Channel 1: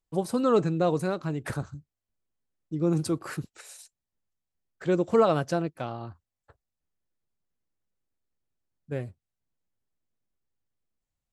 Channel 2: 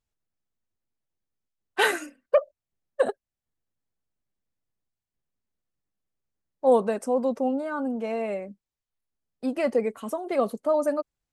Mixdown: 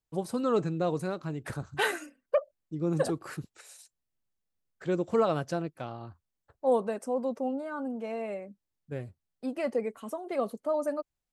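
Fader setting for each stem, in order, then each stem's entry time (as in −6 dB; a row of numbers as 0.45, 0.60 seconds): −4.5, −6.0 decibels; 0.00, 0.00 seconds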